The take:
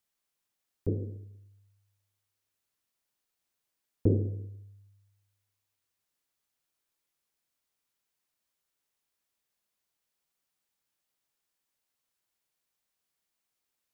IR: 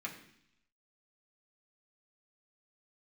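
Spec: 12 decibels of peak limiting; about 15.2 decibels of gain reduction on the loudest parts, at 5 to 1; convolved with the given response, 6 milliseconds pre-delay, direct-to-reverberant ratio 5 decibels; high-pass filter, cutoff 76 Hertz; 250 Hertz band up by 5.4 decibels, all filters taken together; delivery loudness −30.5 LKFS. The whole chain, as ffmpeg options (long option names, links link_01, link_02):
-filter_complex "[0:a]highpass=76,equalizer=frequency=250:width_type=o:gain=7,acompressor=threshold=-34dB:ratio=5,alimiter=level_in=9.5dB:limit=-24dB:level=0:latency=1,volume=-9.5dB,asplit=2[link_01][link_02];[1:a]atrim=start_sample=2205,adelay=6[link_03];[link_02][link_03]afir=irnorm=-1:irlink=0,volume=-5.5dB[link_04];[link_01][link_04]amix=inputs=2:normalize=0,volume=15dB"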